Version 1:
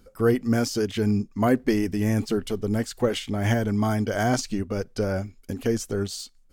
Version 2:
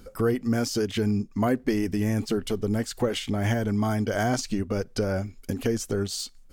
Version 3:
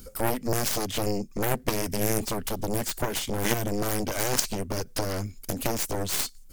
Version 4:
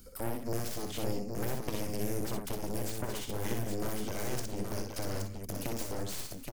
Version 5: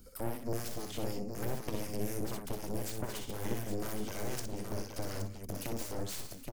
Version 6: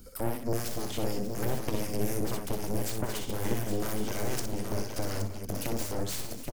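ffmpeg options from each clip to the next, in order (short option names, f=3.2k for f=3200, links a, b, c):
-af "acompressor=threshold=-36dB:ratio=2,volume=7dB"
-af "crystalizer=i=5:c=0,lowshelf=f=330:g=8,aeval=exprs='0.668*(cos(1*acos(clip(val(0)/0.668,-1,1)))-cos(1*PI/2))+0.188*(cos(3*acos(clip(val(0)/0.668,-1,1)))-cos(3*PI/2))+0.0668*(cos(7*acos(clip(val(0)/0.668,-1,1)))-cos(7*PI/2))+0.0299*(cos(8*acos(clip(val(0)/0.668,-1,1)))-cos(8*PI/2))':c=same"
-filter_complex "[0:a]acrossover=split=490[a][b];[b]acompressor=threshold=-31dB:ratio=6[c];[a][c]amix=inputs=2:normalize=0,asplit=2[d][e];[e]aecho=0:1:61|182|201|822:0.596|0.119|0.141|0.562[f];[d][f]amix=inputs=2:normalize=0,volume=-8.5dB"
-filter_complex "[0:a]acrossover=split=1100[a][b];[a]aeval=exprs='val(0)*(1-0.5/2+0.5/2*cos(2*PI*4*n/s))':c=same[c];[b]aeval=exprs='val(0)*(1-0.5/2-0.5/2*cos(2*PI*4*n/s))':c=same[d];[c][d]amix=inputs=2:normalize=0"
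-af "aecho=1:1:588:0.224,volume=5.5dB"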